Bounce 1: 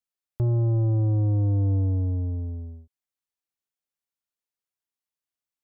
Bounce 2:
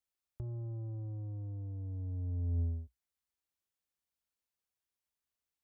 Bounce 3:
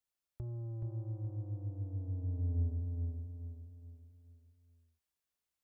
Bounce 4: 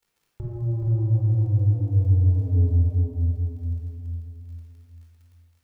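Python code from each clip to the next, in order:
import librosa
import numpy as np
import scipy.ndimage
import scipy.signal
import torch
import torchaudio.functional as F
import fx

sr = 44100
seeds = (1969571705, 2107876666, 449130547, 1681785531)

y1 = fx.peak_eq(x, sr, hz=61.0, db=12.0, octaves=0.73)
y1 = fx.over_compress(y1, sr, threshold_db=-29.0, ratio=-1.0)
y1 = y1 * 10.0 ** (-9.0 / 20.0)
y2 = fx.echo_feedback(y1, sr, ms=424, feedback_pct=42, wet_db=-4.0)
y2 = y2 * 10.0 ** (-1.0 / 20.0)
y3 = fx.dmg_crackle(y2, sr, seeds[0], per_s=36.0, level_db=-58.0)
y3 = fx.room_shoebox(y3, sr, seeds[1], volume_m3=2100.0, walls='mixed', distance_m=4.3)
y3 = y3 * 10.0 ** (6.0 / 20.0)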